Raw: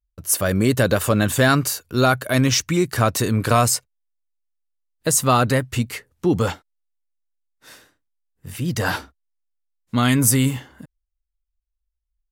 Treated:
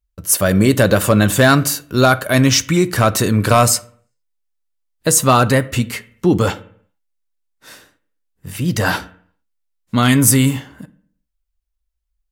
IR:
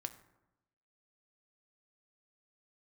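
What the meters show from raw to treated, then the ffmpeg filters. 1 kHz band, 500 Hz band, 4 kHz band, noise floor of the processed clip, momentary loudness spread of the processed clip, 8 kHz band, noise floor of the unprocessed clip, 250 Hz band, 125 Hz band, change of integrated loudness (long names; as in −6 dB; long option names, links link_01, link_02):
+4.5 dB, +5.0 dB, +4.5 dB, −73 dBFS, 10 LU, +4.5 dB, −79 dBFS, +5.0 dB, +4.5 dB, +5.0 dB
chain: -filter_complex "[0:a]volume=8dB,asoftclip=hard,volume=-8dB,asplit=2[link_01][link_02];[1:a]atrim=start_sample=2205,asetrate=74970,aresample=44100[link_03];[link_02][link_03]afir=irnorm=-1:irlink=0,volume=10dB[link_04];[link_01][link_04]amix=inputs=2:normalize=0,volume=-2.5dB"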